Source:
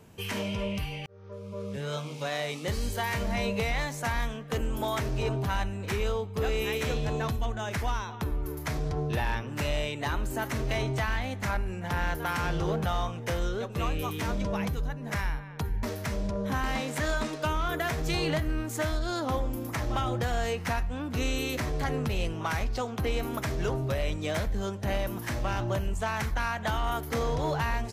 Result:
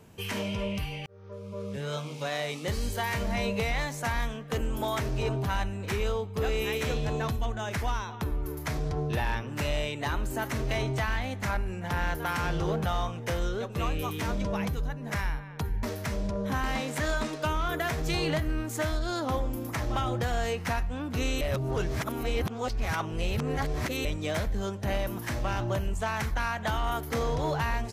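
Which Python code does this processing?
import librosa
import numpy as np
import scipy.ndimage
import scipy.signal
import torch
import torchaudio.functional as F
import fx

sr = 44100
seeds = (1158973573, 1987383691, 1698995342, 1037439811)

y = fx.edit(x, sr, fx.reverse_span(start_s=21.41, length_s=2.64), tone=tone)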